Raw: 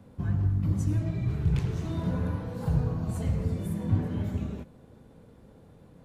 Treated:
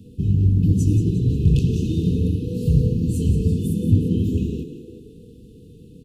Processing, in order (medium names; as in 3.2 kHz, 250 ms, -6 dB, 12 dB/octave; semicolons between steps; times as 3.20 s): frequency-shifting echo 177 ms, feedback 45%, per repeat +81 Hz, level -11 dB; FFT band-reject 500–2500 Hz; trim +9 dB